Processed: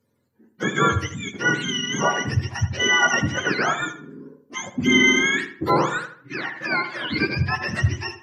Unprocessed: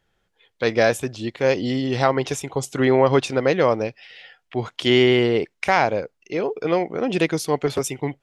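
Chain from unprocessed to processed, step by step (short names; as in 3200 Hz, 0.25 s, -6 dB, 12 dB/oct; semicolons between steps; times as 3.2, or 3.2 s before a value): spectrum mirrored in octaves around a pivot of 880 Hz; darkening echo 78 ms, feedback 39%, low-pass 2800 Hz, level -9.5 dB; MP2 128 kbps 48000 Hz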